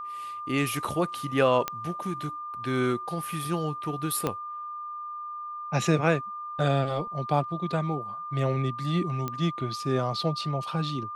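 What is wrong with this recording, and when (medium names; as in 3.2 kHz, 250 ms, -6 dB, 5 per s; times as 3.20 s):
whine 1.2 kHz -34 dBFS
1.68 s: pop -12 dBFS
4.27 s: pop -13 dBFS
9.28 s: pop -17 dBFS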